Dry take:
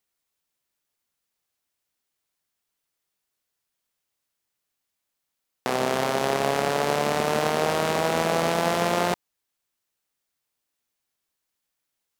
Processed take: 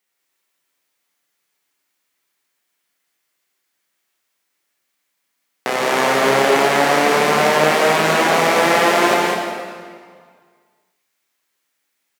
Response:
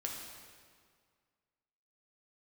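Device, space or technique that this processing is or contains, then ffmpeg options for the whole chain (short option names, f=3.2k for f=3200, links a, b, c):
stadium PA: -filter_complex "[0:a]highpass=190,equalizer=f=2k:t=o:w=0.77:g=5.5,aecho=1:1:169.1|201.2:0.562|0.562[a];[1:a]atrim=start_sample=2205[b];[a][b]afir=irnorm=-1:irlink=0,volume=6dB"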